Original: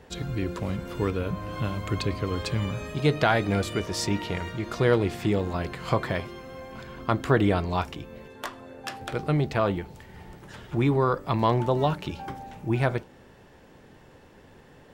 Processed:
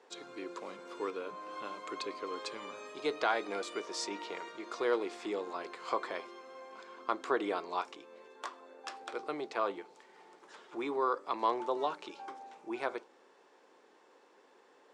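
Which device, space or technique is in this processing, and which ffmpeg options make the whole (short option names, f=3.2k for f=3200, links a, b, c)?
phone speaker on a table: -af "highpass=f=350:w=0.5412,highpass=f=350:w=1.3066,equalizer=f=620:t=q:w=4:g=-4,equalizer=f=1.1k:t=q:w=4:g=4,equalizer=f=1.8k:t=q:w=4:g=-4,equalizer=f=2.9k:t=q:w=4:g=-4,lowpass=f=8.5k:w=0.5412,lowpass=f=8.5k:w=1.3066,volume=-7dB"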